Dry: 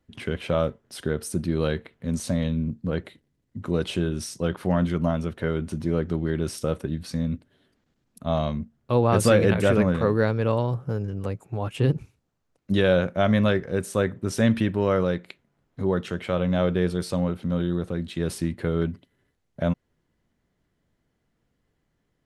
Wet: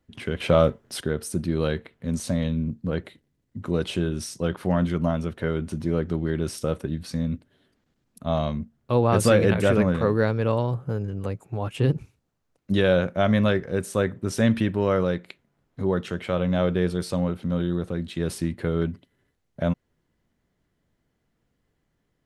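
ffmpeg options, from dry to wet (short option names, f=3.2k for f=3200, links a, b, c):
-filter_complex "[0:a]asettb=1/sr,asplit=3[a][b][c];[a]atrim=end=0.404[d];[b]atrim=start=0.4:end=1.01,asetpts=PTS-STARTPTS,afade=t=in:d=0.004:c=qsin,afade=t=out:st=0.606:d=0.004:c=qsin,acontrast=50[e];[c]atrim=start=1.006[f];[d][e]acrossfade=d=0.004:c1=hsin:c2=qsin[g];[g][f]acrossfade=d=0.004:c1=qsin:c2=hsin,asettb=1/sr,asplit=3[h][i][j];[h]atrim=end=10.714[k];[i]atrim=start=10.71:end=11.3,asetpts=PTS-STARTPTS,afade=t=in:d=0.004:c=qsin,afade=t=out:st=0.586:d=0.004:c=qsin,asuperstop=centerf=5500:order=12:qfactor=7.3[l];[j]atrim=start=11.296[m];[k][l]acrossfade=d=0.004:c1=hsin:c2=qsin[n];[n][m]acrossfade=d=0.004:c1=qsin:c2=hsin"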